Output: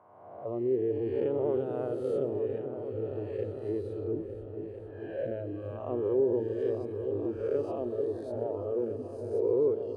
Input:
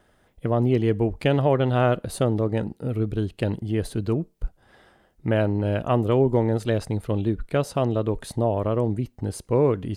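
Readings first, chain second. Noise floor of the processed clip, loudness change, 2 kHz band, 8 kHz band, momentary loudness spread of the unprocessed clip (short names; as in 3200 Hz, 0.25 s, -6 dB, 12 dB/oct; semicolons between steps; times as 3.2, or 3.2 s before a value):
-44 dBFS, -8.0 dB, -19.5 dB, under -25 dB, 8 LU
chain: spectral swells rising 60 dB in 1.69 s; spectral noise reduction 15 dB; bell 96 Hz +13.5 dB 0.51 oct; in parallel at -1 dB: limiter -16 dBFS, peak gain reduction 10 dB; on the sum: compressor 1.5:1, threshold -21 dBFS, peak gain reduction 4.5 dB; auto-wah 400–1000 Hz, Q 3.4, down, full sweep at -18.5 dBFS; high shelf 4800 Hz +5.5 dB; on a send: repeats that get brighter 0.451 s, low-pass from 400 Hz, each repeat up 2 oct, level -6 dB; on the sum: warbling echo 0.128 s, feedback 61%, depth 80 cents, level -18 dB; gain -4.5 dB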